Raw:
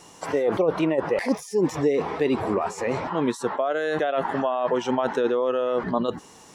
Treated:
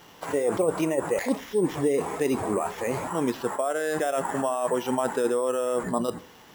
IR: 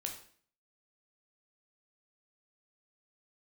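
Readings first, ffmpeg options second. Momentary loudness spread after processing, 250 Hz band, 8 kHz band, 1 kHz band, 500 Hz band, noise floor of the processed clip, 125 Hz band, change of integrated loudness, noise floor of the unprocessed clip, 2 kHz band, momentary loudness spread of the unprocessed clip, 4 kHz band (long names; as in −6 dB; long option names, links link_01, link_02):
4 LU, −2.5 dB, +5.5 dB, −2.5 dB, −2.0 dB, −51 dBFS, −2.0 dB, −2.0 dB, −49 dBFS, −2.5 dB, 4 LU, −3.0 dB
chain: -filter_complex "[0:a]acrusher=samples=5:mix=1:aa=0.000001,asplit=2[link_01][link_02];[1:a]atrim=start_sample=2205[link_03];[link_02][link_03]afir=irnorm=-1:irlink=0,volume=-8dB[link_04];[link_01][link_04]amix=inputs=2:normalize=0,volume=-4.5dB"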